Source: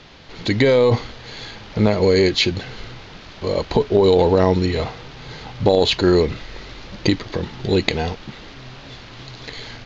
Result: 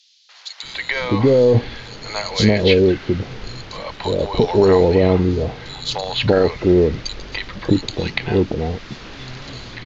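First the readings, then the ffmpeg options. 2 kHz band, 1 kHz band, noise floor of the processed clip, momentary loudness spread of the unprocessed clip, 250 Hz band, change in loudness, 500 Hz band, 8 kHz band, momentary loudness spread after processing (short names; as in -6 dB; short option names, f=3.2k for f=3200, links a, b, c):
+1.5 dB, -0.5 dB, -44 dBFS, 22 LU, +2.0 dB, +0.5 dB, +1.5 dB, n/a, 19 LU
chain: -filter_complex "[0:a]dynaudnorm=f=110:g=11:m=4dB,acrossover=split=770|3900[a][b][c];[b]adelay=290[d];[a]adelay=630[e];[e][d][c]amix=inputs=3:normalize=0,volume=1.5dB"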